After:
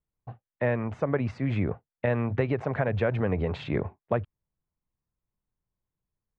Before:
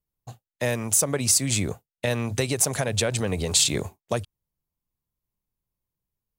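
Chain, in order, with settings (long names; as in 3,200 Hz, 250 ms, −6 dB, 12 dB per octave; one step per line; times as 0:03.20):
low-pass filter 2,000 Hz 24 dB per octave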